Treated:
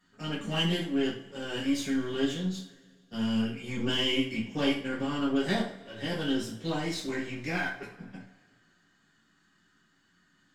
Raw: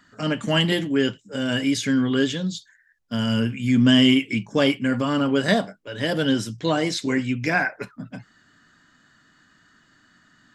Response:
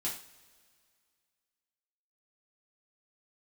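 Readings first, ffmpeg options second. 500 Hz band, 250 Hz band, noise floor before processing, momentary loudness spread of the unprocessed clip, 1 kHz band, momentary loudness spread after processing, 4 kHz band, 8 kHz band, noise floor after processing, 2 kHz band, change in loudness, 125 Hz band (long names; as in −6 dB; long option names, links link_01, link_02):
−9.0 dB, −9.5 dB, −60 dBFS, 11 LU, −9.0 dB, 11 LU, −7.5 dB, −8.5 dB, −68 dBFS, −9.5 dB, −9.0 dB, −10.0 dB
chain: -filter_complex "[0:a]aeval=exprs='if(lt(val(0),0),0.447*val(0),val(0))':channel_layout=same,bandreject=frequency=64.14:width_type=h:width=4,bandreject=frequency=128.28:width_type=h:width=4,bandreject=frequency=192.42:width_type=h:width=4,bandreject=frequency=256.56:width_type=h:width=4,bandreject=frequency=320.7:width_type=h:width=4,bandreject=frequency=384.84:width_type=h:width=4,bandreject=frequency=448.98:width_type=h:width=4,bandreject=frequency=513.12:width_type=h:width=4,bandreject=frequency=577.26:width_type=h:width=4,bandreject=frequency=641.4:width_type=h:width=4,bandreject=frequency=705.54:width_type=h:width=4,bandreject=frequency=769.68:width_type=h:width=4,bandreject=frequency=833.82:width_type=h:width=4,bandreject=frequency=897.96:width_type=h:width=4,bandreject=frequency=962.1:width_type=h:width=4,bandreject=frequency=1026.24:width_type=h:width=4,bandreject=frequency=1090.38:width_type=h:width=4,bandreject=frequency=1154.52:width_type=h:width=4,bandreject=frequency=1218.66:width_type=h:width=4,bandreject=frequency=1282.8:width_type=h:width=4,bandreject=frequency=1346.94:width_type=h:width=4,bandreject=frequency=1411.08:width_type=h:width=4,bandreject=frequency=1475.22:width_type=h:width=4,bandreject=frequency=1539.36:width_type=h:width=4,bandreject=frequency=1603.5:width_type=h:width=4,bandreject=frequency=1667.64:width_type=h:width=4,bandreject=frequency=1731.78:width_type=h:width=4,bandreject=frequency=1795.92:width_type=h:width=4,bandreject=frequency=1860.06:width_type=h:width=4,bandreject=frequency=1924.2:width_type=h:width=4,bandreject=frequency=1988.34:width_type=h:width=4,bandreject=frequency=2052.48:width_type=h:width=4,bandreject=frequency=2116.62:width_type=h:width=4[link_01];[1:a]atrim=start_sample=2205,asetrate=48510,aresample=44100[link_02];[link_01][link_02]afir=irnorm=-1:irlink=0,volume=-8dB" -ar 48000 -c:a libmp3lame -b:a 320k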